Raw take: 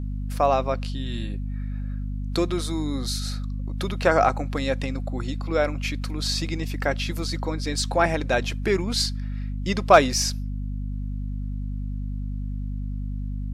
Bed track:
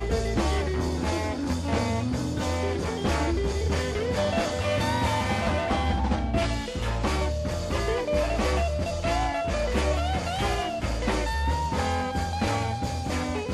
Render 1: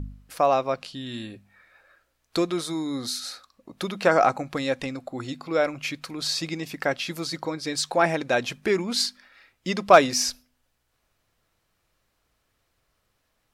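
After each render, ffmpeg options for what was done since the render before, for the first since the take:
-af "bandreject=f=50:t=h:w=4,bandreject=f=100:t=h:w=4,bandreject=f=150:t=h:w=4,bandreject=f=200:t=h:w=4,bandreject=f=250:t=h:w=4"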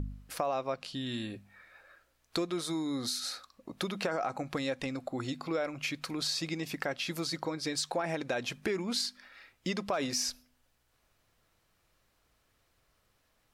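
-af "alimiter=limit=0.2:level=0:latency=1:release=45,acompressor=threshold=0.0224:ratio=2.5"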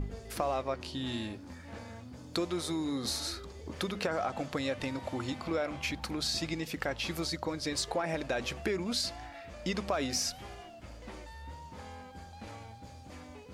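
-filter_complex "[1:a]volume=0.1[s0];[0:a][s0]amix=inputs=2:normalize=0"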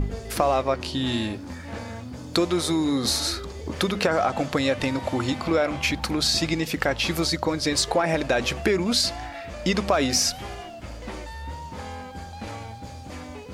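-af "volume=3.35"

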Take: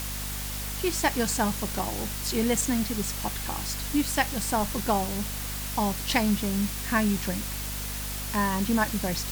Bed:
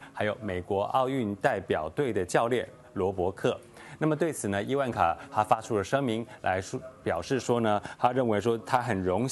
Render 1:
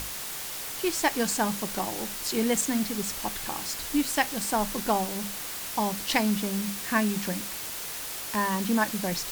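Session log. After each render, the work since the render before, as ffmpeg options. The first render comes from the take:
-af "bandreject=f=50:t=h:w=6,bandreject=f=100:t=h:w=6,bandreject=f=150:t=h:w=6,bandreject=f=200:t=h:w=6,bandreject=f=250:t=h:w=6"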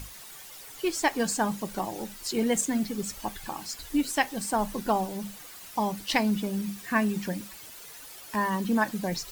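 -af "afftdn=nr=12:nf=-36"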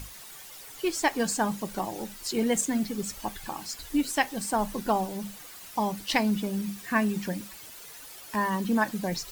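-af anull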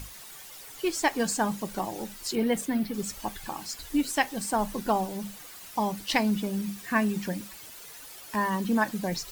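-filter_complex "[0:a]asettb=1/sr,asplit=3[s0][s1][s2];[s0]atrim=end=2.354[s3];[s1]atrim=start=2.35:end=2.94,asetpts=PTS-STARTPTS,afade=t=in:d=0.004:c=qsin,afade=t=out:st=0.586:d=0.004:c=qsin,equalizer=f=7000:t=o:w=0.71:g=-12[s4];[s2]atrim=start=2.936[s5];[s3][s4]acrossfade=d=0.004:c1=hsin:c2=qsin[s6];[s6][s5]acrossfade=d=0.004:c1=qsin:c2=hsin"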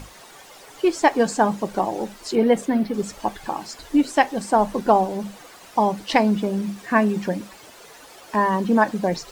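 -filter_complex "[0:a]acrossover=split=9200[s0][s1];[s1]acompressor=threshold=0.00158:ratio=4:attack=1:release=60[s2];[s0][s2]amix=inputs=2:normalize=0,equalizer=f=550:w=0.41:g=11"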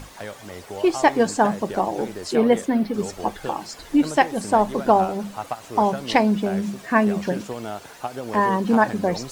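-filter_complex "[1:a]volume=0.501[s0];[0:a][s0]amix=inputs=2:normalize=0"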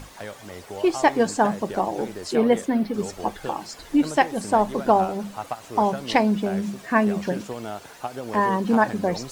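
-af "volume=0.841"

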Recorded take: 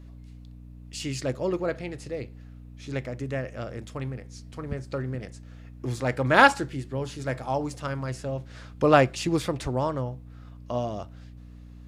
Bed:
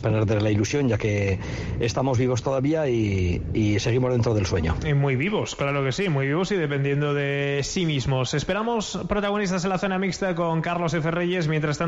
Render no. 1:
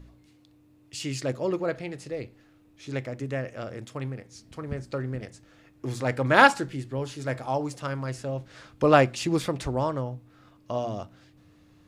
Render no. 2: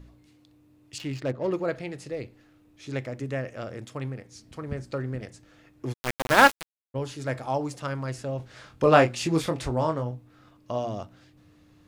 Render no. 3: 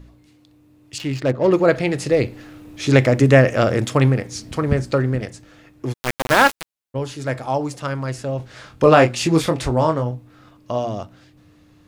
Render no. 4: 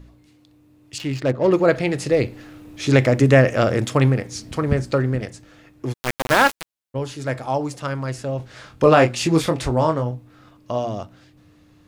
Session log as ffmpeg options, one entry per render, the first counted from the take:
-af "bandreject=f=60:t=h:w=4,bandreject=f=120:t=h:w=4,bandreject=f=180:t=h:w=4,bandreject=f=240:t=h:w=4"
-filter_complex "[0:a]asettb=1/sr,asplit=3[s0][s1][s2];[s0]atrim=end=0.984[s3];[s1]atrim=start=0.98:end=1.52,asetpts=PTS-STARTPTS,afade=t=in:d=0.004:c=qsin,afade=t=out:st=0.536:d=0.004:c=qsin,adynamicsmooth=sensitivity=5.5:basefreq=1400[s4];[s2]atrim=start=1.516[s5];[s3][s4]acrossfade=d=0.004:c1=hsin:c2=qsin[s6];[s6][s5]acrossfade=d=0.004:c1=qsin:c2=hsin,asplit=3[s7][s8][s9];[s7]afade=t=out:st=5.92:d=0.02[s10];[s8]aeval=exprs='val(0)*gte(abs(val(0)),0.0944)':c=same,afade=t=in:st=5.92:d=0.02,afade=t=out:st=6.94:d=0.02[s11];[s9]afade=t=in:st=6.94:d=0.02[s12];[s10][s11][s12]amix=inputs=3:normalize=0,asettb=1/sr,asplit=3[s13][s14][s15];[s13]atrim=end=8.374[s16];[s14]atrim=start=8.37:end=10.11,asetpts=PTS-STARTPTS,afade=t=in:d=0.004:c=qsin,afade=t=out:st=1.736:d=0.004:c=qsin,asplit=2[s17][s18];[s18]adelay=25,volume=0.501[s19];[s17][s19]amix=inputs=2:normalize=0,atrim=end_sample=76734[s20];[s15]atrim=start=10.106[s21];[s16][s20]acrossfade=d=0.004:c1=hsin:c2=qsin[s22];[s22][s21]acrossfade=d=0.004:c1=qsin:c2=hsin"
-af "dynaudnorm=f=420:g=9:m=6.31,alimiter=level_in=1.78:limit=0.891:release=50:level=0:latency=1"
-af "volume=0.891,alimiter=limit=0.708:level=0:latency=1"

